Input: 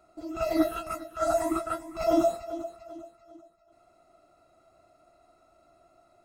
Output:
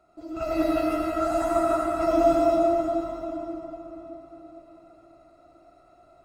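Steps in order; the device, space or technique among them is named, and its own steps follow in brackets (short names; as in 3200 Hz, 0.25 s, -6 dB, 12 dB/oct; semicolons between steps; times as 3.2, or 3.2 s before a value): swimming-pool hall (reverb RT60 4.4 s, pre-delay 59 ms, DRR -5.5 dB; high shelf 4700 Hz -7.5 dB); gain -1 dB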